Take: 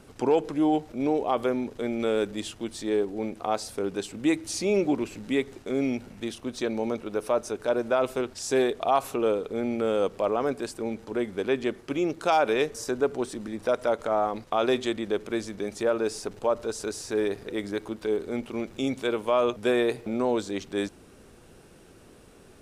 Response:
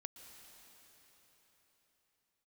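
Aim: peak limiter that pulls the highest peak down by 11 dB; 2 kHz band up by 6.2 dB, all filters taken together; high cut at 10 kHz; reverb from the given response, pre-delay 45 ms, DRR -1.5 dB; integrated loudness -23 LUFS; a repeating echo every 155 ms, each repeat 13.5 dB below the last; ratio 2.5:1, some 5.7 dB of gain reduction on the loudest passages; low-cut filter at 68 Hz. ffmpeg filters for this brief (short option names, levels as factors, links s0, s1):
-filter_complex "[0:a]highpass=68,lowpass=10000,equalizer=f=2000:t=o:g=8,acompressor=threshold=0.0501:ratio=2.5,alimiter=limit=0.0794:level=0:latency=1,aecho=1:1:155|310:0.211|0.0444,asplit=2[s0][s1];[1:a]atrim=start_sample=2205,adelay=45[s2];[s1][s2]afir=irnorm=-1:irlink=0,volume=2.11[s3];[s0][s3]amix=inputs=2:normalize=0,volume=2.11"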